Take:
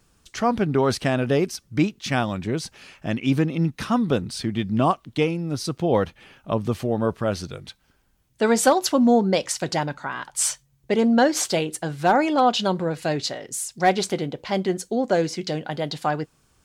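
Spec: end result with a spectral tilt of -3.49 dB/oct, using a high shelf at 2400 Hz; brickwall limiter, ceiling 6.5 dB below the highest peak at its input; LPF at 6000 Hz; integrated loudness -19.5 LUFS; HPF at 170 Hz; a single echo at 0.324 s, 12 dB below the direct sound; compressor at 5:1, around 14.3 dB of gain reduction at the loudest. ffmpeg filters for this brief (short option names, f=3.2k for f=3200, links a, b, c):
-af "highpass=170,lowpass=6k,highshelf=f=2.4k:g=8,acompressor=threshold=-28dB:ratio=5,alimiter=limit=-20.5dB:level=0:latency=1,aecho=1:1:324:0.251,volume=13.5dB"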